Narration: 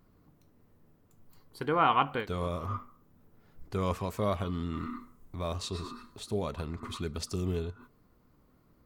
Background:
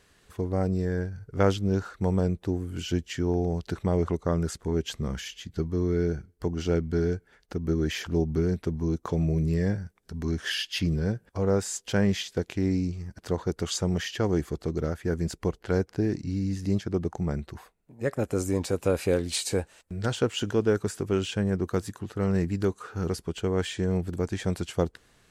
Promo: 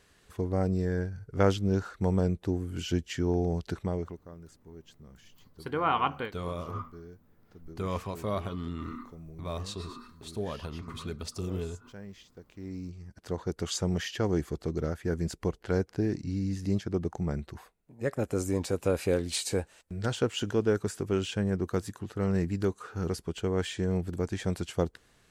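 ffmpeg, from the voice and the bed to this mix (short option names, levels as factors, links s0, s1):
-filter_complex "[0:a]adelay=4050,volume=0.794[s0];[1:a]volume=7.5,afade=t=out:st=3.64:d=0.57:silence=0.1,afade=t=in:st=12.48:d=1.27:silence=0.112202[s1];[s0][s1]amix=inputs=2:normalize=0"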